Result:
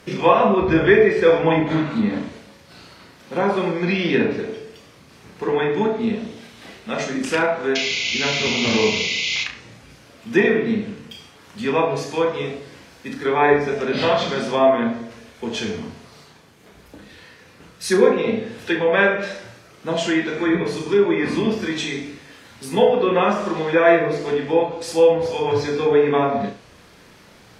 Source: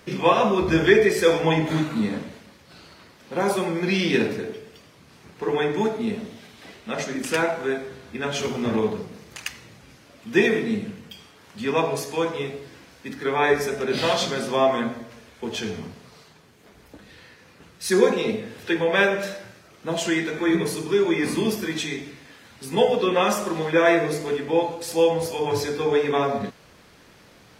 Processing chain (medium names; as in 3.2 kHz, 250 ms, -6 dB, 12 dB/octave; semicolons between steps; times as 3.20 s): painted sound noise, 7.75–9.44 s, 2–7.2 kHz -19 dBFS; low-pass that closes with the level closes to 2.5 kHz, closed at -17.5 dBFS; flutter echo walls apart 5.9 m, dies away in 0.31 s; trim +2.5 dB